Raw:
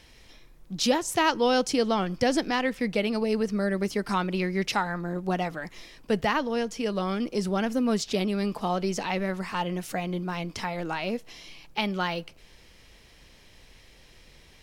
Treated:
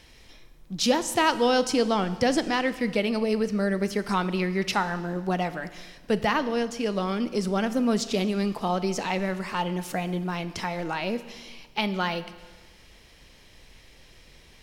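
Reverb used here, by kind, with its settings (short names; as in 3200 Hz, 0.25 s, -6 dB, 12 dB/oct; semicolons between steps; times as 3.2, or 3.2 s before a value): Schroeder reverb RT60 1.4 s, combs from 26 ms, DRR 13 dB; gain +1 dB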